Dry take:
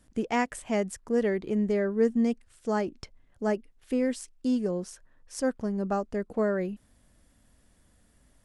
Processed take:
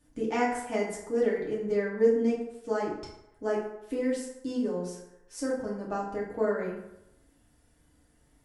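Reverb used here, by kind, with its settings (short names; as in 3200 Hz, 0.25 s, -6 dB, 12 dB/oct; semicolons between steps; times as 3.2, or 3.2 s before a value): FDN reverb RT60 0.89 s, low-frequency decay 0.75×, high-frequency decay 0.55×, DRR -6 dB; gain -7.5 dB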